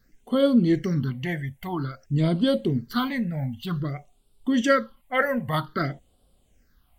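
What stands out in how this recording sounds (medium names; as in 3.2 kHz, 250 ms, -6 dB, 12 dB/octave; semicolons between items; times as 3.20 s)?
phasing stages 6, 0.52 Hz, lowest notch 300–1800 Hz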